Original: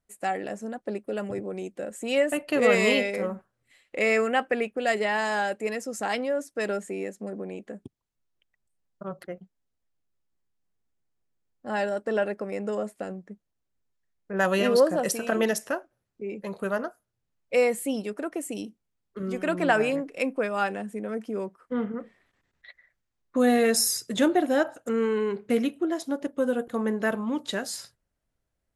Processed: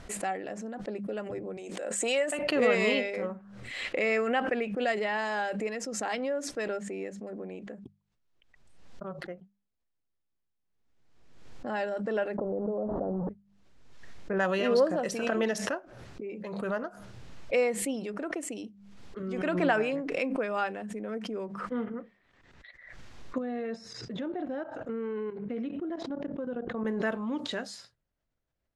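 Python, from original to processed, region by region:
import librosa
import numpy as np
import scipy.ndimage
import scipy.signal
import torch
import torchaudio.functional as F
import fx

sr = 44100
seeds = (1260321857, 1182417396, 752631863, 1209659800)

y = fx.chain(x, sr, fx.highpass(hz=440.0, slope=12),
    fx.peak_eq(hz=8400.0, db=9.5, octaves=0.82),
    fx.pre_swell(db_per_s=31.0), at=(1.57, 2.39))
y = fx.chain(y, sr, fx.delta_mod(bps=32000, step_db=-37.0),
    fx.cheby2_lowpass(hz=2200.0, order=4, stop_db=50),
    fx.env_flatten(amount_pct=100), at=(12.38, 13.29))
y = fx.chain(y, sr, fx.level_steps(step_db=14),
    fx.spacing_loss(db_at_10k=28), at=(23.38, 26.85))
y = scipy.signal.sosfilt(scipy.signal.butter(2, 5200.0, 'lowpass', fs=sr, output='sos'), y)
y = fx.hum_notches(y, sr, base_hz=50, count=4)
y = fx.pre_swell(y, sr, db_per_s=43.0)
y = y * 10.0 ** (-4.5 / 20.0)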